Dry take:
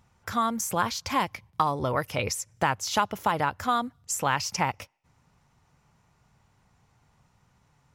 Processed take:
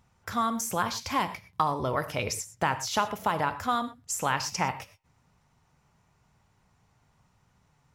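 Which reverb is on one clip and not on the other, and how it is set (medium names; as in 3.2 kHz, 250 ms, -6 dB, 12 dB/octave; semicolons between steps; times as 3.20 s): gated-style reverb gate 140 ms flat, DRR 10.5 dB; trim -2 dB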